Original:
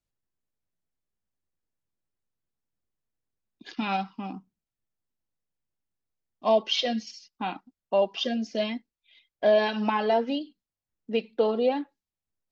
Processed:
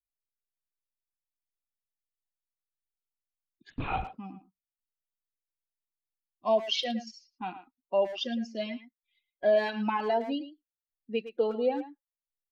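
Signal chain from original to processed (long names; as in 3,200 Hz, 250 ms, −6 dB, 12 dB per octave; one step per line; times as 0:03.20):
spectral dynamics exaggerated over time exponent 1.5
0:03.70–0:04.11: linear-prediction vocoder at 8 kHz whisper
far-end echo of a speakerphone 110 ms, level −11 dB
level −2 dB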